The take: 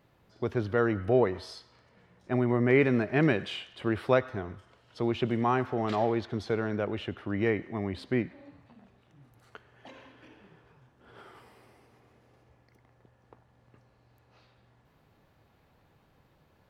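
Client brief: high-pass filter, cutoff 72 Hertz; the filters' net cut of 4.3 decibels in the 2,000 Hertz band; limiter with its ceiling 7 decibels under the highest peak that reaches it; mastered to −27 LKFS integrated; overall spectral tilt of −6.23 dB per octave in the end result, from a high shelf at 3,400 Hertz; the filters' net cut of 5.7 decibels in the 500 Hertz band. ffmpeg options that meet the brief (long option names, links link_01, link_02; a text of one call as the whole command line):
ffmpeg -i in.wav -af "highpass=72,equalizer=frequency=500:width_type=o:gain=-7.5,equalizer=frequency=2000:width_type=o:gain=-4,highshelf=frequency=3400:gain=-3,volume=6.5dB,alimiter=limit=-14dB:level=0:latency=1" out.wav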